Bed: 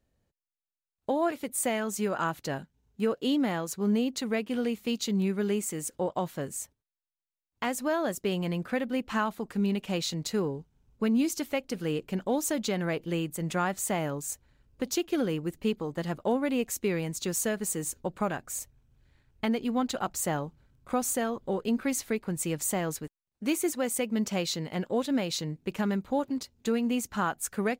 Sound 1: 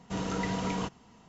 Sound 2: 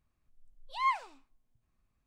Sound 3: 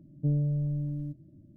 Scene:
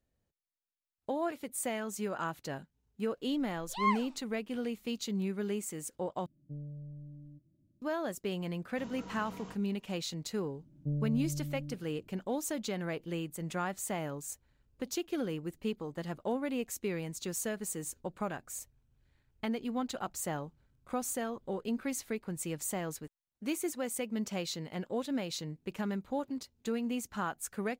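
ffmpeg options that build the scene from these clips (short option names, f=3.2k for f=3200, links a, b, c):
-filter_complex "[3:a]asplit=2[a][b];[0:a]volume=-6.5dB,asplit=2[c][d];[c]atrim=end=6.264[e];[a]atrim=end=1.56,asetpts=PTS-STARTPTS,volume=-16.5dB[f];[d]atrim=start=7.816[g];[2:a]atrim=end=2.06,asetpts=PTS-STARTPTS,volume=-1dB,afade=t=in:d=0.004:c=hsin,afade=t=out:st=2.056:d=0.004:c=hsin,adelay=3000[h];[1:a]atrim=end=1.28,asetpts=PTS-STARTPTS,volume=-15.5dB,afade=t=in:d=0.004:c=hsin,afade=t=out:st=1.276:d=0.004:c=hsin,adelay=8670[i];[b]atrim=end=1.56,asetpts=PTS-STARTPTS,volume=-7dB,afade=t=in:d=0.004:c=hsin,afade=t=out:st=1.556:d=0.004:c=hsin,adelay=10620[j];[e][f]acrossfade=d=0.004:c1=hsin:c2=hsin[k];[k][g]acrossfade=d=0.004:c1=hsin:c2=hsin[l];[l][h][i][j]amix=inputs=4:normalize=0"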